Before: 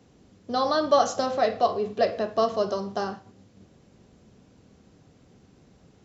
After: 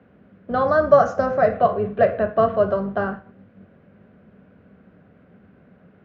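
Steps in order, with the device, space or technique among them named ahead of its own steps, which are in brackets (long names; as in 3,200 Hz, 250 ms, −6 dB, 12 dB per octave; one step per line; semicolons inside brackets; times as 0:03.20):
0:00.68–0:01.54: high shelf with overshoot 4,700 Hz +11.5 dB, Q 3
sub-octave bass pedal (sub-octave generator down 2 octaves, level −1 dB; loudspeaker in its box 87–2,400 Hz, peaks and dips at 130 Hz −7 dB, 190 Hz +5 dB, 320 Hz −5 dB, 600 Hz +5 dB, 870 Hz −5 dB, 1,500 Hz +8 dB)
level +4 dB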